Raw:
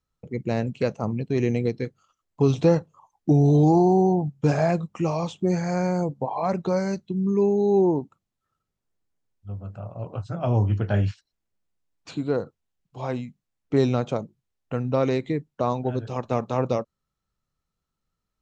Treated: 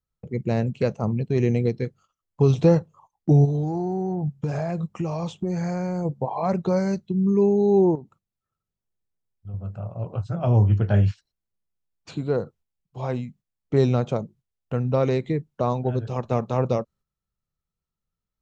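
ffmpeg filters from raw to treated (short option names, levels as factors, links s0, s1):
-filter_complex "[0:a]asplit=3[s0][s1][s2];[s0]afade=t=out:st=3.44:d=0.02[s3];[s1]acompressor=threshold=0.0631:ratio=6:attack=3.2:release=140:knee=1:detection=peak,afade=t=in:st=3.44:d=0.02,afade=t=out:st=6.04:d=0.02[s4];[s2]afade=t=in:st=6.04:d=0.02[s5];[s3][s4][s5]amix=inputs=3:normalize=0,asettb=1/sr,asplit=3[s6][s7][s8];[s6]atrim=end=7.954[s9];[s7]atrim=start=7.95:end=9.54,asetpts=PTS-STARTPTS,afade=t=in:d=0.004:c=qsin,afade=t=out:st=1.586:d=0.004:c=qsin,acompressor=threshold=0.0126:ratio=2.5:attack=3.2:release=140:knee=1:detection=peak[s10];[s8]atrim=start=9.536[s11];[s9][s10]acrossfade=d=0.004:c1=hsin:c2=qsin[s12];[s12][s11]acrossfade=d=0.004:c1=qsin:c2=hsin,equalizer=f=280:t=o:w=0.28:g=-7,agate=range=0.398:threshold=0.00224:ratio=16:detection=peak,lowshelf=f=450:g=6,volume=0.841"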